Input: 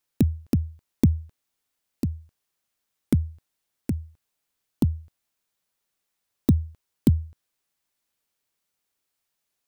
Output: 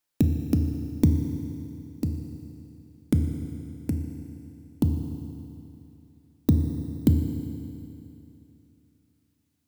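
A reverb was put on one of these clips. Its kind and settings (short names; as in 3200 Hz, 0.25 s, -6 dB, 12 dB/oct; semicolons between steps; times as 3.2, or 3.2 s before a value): FDN reverb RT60 2.9 s, high-frequency decay 0.95×, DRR 4.5 dB; gain -1.5 dB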